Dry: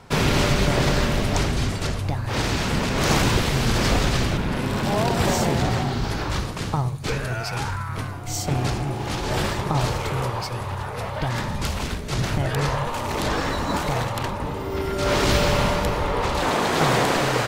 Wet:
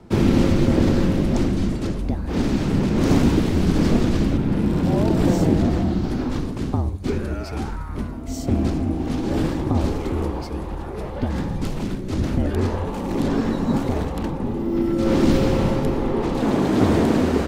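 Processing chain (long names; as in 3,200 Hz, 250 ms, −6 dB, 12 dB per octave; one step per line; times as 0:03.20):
low-shelf EQ 440 Hz +8.5 dB
frequency shifter −50 Hz
parametric band 260 Hz +14 dB 1.6 octaves
level −9 dB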